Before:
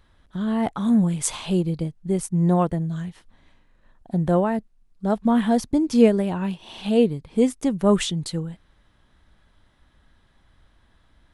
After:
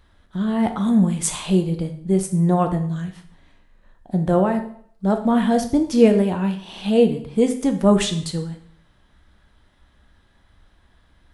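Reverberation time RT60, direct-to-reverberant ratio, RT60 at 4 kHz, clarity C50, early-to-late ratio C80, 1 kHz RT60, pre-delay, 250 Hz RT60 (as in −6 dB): 0.60 s, 5.0 dB, 0.55 s, 10.5 dB, 14.0 dB, 0.60 s, 5 ms, 0.55 s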